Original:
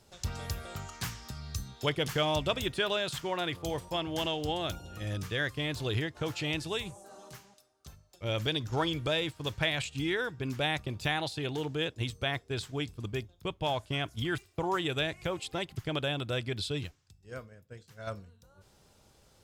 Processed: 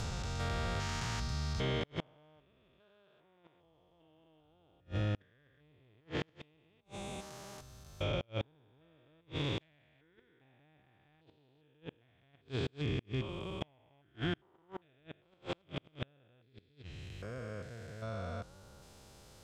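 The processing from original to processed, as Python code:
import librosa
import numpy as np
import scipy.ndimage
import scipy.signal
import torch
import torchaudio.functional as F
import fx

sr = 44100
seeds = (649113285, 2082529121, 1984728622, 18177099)

y = fx.spec_steps(x, sr, hold_ms=400)
y = fx.env_lowpass_down(y, sr, base_hz=2400.0, full_db=-33.0)
y = fx.gate_flip(y, sr, shuts_db=-30.0, range_db=-37)
y = y * librosa.db_to_amplitude(6.5)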